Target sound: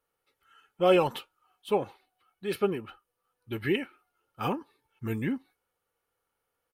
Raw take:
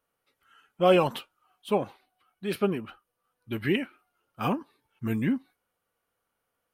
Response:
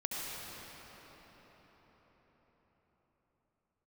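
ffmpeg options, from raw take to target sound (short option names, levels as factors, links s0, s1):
-af "aecho=1:1:2.3:0.35,volume=0.794"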